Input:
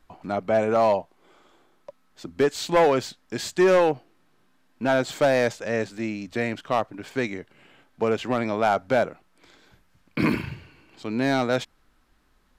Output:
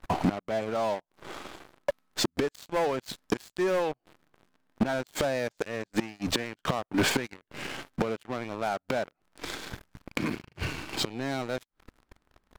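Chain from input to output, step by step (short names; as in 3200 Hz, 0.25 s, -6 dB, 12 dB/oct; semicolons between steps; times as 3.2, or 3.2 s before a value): flipped gate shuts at -24 dBFS, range -28 dB; sample leveller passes 5; mismatched tape noise reduction decoder only; gain +1 dB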